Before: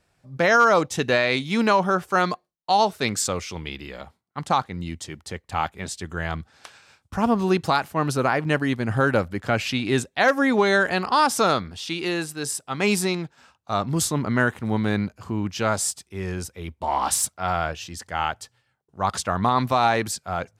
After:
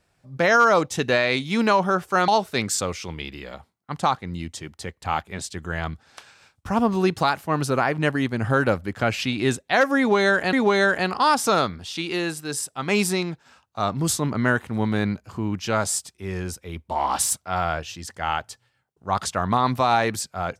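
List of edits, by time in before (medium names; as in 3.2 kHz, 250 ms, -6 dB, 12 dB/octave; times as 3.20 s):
2.28–2.75 s: delete
10.45–11.00 s: loop, 2 plays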